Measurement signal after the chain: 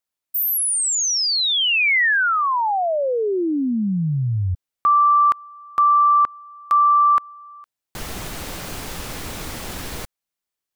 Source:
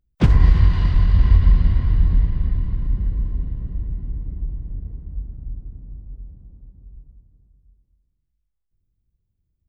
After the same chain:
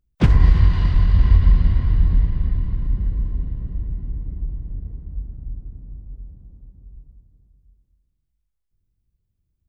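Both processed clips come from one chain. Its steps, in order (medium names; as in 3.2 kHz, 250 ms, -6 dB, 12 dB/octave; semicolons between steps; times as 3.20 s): dynamic bell 2 kHz, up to +4 dB, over -32 dBFS, Q 1.2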